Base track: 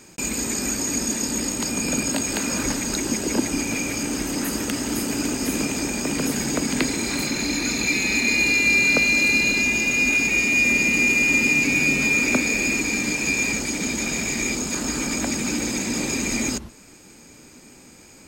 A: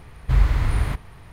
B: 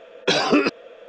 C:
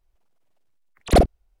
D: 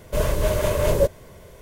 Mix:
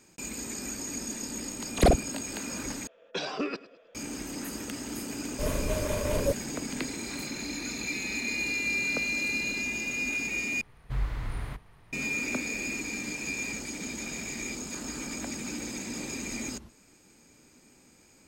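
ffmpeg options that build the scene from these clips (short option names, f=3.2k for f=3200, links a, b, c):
-filter_complex "[0:a]volume=-11.5dB[a];[3:a]acompressor=threshold=-15dB:ratio=6:attack=3.2:release=140:knee=1:detection=peak[b];[2:a]aecho=1:1:105|210|315:0.126|0.0466|0.0172[c];[1:a]equalizer=f=74:t=o:w=0.38:g=-14.5[d];[a]asplit=3[e][f][g];[e]atrim=end=2.874[h];[c]atrim=end=1.08,asetpts=PTS-STARTPTS,volume=-14.5dB[i];[f]atrim=start=3.946:end=10.614[j];[d]atrim=end=1.32,asetpts=PTS-STARTPTS,volume=-11dB[k];[g]atrim=start=11.926[l];[b]atrim=end=1.6,asetpts=PTS-STARTPTS,volume=-0.5dB,afade=t=in:d=0.004:c=hsin,afade=t=out:st=1.596:d=0.004:c=hsin,adelay=700[m];[4:a]atrim=end=1.61,asetpts=PTS-STARTPTS,volume=-9dB,afade=t=in:d=0.004:c=hsin,afade=t=out:st=1.606:d=0.004:c=hsin,adelay=5260[n];[h][i]acrossfade=d=0.004:c1=hsin:c2=hsin[o];[o][j]acrossfade=d=0.004:c1=hsin:c2=hsin[p];[p][k]acrossfade=d=0.004:c1=hsin:c2=hsin[q];[q][l]acrossfade=d=0.004:c1=hsin:c2=hsin[r];[r][m][n]amix=inputs=3:normalize=0"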